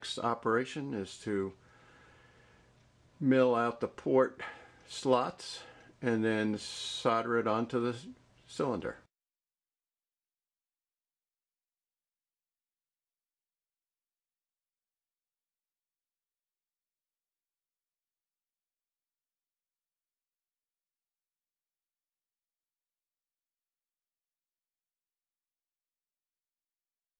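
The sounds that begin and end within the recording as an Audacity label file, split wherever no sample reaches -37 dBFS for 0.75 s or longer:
3.210000	8.920000	sound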